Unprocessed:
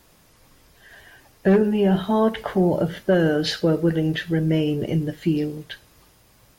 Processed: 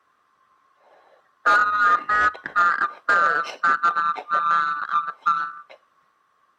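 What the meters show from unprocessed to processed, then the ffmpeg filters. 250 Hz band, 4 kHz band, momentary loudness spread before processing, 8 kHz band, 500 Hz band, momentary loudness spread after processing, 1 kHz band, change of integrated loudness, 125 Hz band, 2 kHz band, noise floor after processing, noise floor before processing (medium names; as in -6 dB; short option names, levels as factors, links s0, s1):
-25.5 dB, -6.5 dB, 6 LU, no reading, -15.0 dB, 6 LU, +13.5 dB, +1.0 dB, under -25 dB, +12.0 dB, -65 dBFS, -56 dBFS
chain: -filter_complex "[0:a]afftfilt=real='real(if(lt(b,960),b+48*(1-2*mod(floor(b/48),2)),b),0)':imag='imag(if(lt(b,960),b+48*(1-2*mod(floor(b/48),2)),b),0)':win_size=2048:overlap=0.75,acrossover=split=650[s0][s1];[s0]acrusher=samples=38:mix=1:aa=0.000001[s2];[s2][s1]amix=inputs=2:normalize=0,aeval=exprs='0.447*(cos(1*acos(clip(val(0)/0.447,-1,1)))-cos(1*PI/2))+0.0251*(cos(4*acos(clip(val(0)/0.447,-1,1)))-cos(4*PI/2))+0.224*(cos(5*acos(clip(val(0)/0.447,-1,1)))-cos(5*PI/2))+0.178*(cos(7*acos(clip(val(0)/0.447,-1,1)))-cos(7*PI/2))':c=same,bandpass=f=680:t=q:w=0.81:csg=0"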